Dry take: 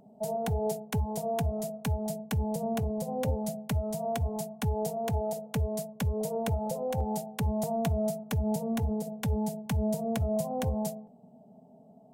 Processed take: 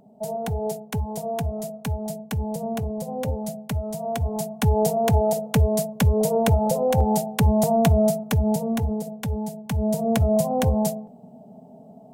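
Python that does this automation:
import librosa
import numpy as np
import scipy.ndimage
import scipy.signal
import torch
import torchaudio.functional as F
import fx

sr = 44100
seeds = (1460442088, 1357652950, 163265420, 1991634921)

y = fx.gain(x, sr, db=fx.line((4.01, 3.0), (4.78, 11.0), (7.98, 11.0), (9.52, 1.0), (10.12, 9.5)))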